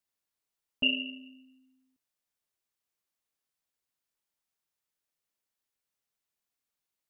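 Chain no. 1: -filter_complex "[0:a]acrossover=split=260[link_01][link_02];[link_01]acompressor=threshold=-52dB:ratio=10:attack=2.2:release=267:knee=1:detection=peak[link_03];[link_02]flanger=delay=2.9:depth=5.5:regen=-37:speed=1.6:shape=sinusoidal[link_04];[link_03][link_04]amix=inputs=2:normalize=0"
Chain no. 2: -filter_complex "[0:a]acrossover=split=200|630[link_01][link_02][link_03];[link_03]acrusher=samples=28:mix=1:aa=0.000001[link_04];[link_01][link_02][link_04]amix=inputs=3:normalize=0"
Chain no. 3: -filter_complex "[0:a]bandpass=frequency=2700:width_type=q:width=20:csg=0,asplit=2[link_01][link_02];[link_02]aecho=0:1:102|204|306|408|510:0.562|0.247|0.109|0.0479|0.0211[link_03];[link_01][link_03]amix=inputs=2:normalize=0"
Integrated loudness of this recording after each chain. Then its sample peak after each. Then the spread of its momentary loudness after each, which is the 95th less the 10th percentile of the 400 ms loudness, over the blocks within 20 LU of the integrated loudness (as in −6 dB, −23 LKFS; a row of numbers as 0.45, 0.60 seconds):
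−34.5, −32.5, −33.0 LKFS; −19.5, −16.0, −20.5 dBFS; 14, 15, 15 LU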